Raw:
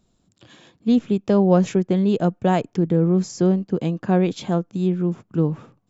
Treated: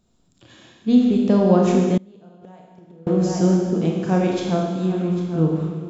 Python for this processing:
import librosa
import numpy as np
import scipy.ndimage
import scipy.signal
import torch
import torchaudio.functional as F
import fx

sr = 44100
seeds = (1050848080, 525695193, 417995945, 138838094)

y = x + 10.0 ** (-13.5 / 20.0) * np.pad(x, (int(797 * sr / 1000.0), 0))[:len(x)]
y = fx.rev_schroeder(y, sr, rt60_s=1.5, comb_ms=25, drr_db=-1.0)
y = fx.gate_flip(y, sr, shuts_db=-11.0, range_db=-28, at=(1.97, 3.07))
y = y * librosa.db_to_amplitude(-1.5)